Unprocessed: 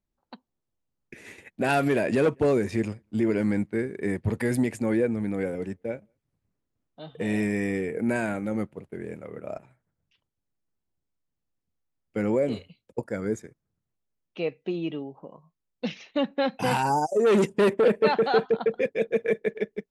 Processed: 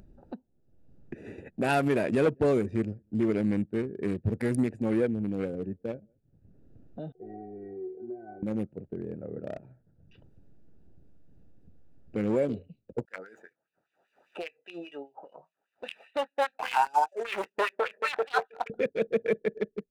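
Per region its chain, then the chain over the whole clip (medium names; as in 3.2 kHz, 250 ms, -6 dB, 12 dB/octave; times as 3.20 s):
7.12–8.43 s: resonant low-pass 760 Hz, resonance Q 2 + inharmonic resonator 370 Hz, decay 0.44 s, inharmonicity 0.002
13.05–18.70 s: median filter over 9 samples + LFO high-pass sine 5 Hz 710–2800 Hz + doubling 22 ms -12.5 dB
whole clip: local Wiener filter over 41 samples; upward compressor, threshold -28 dBFS; trim -1.5 dB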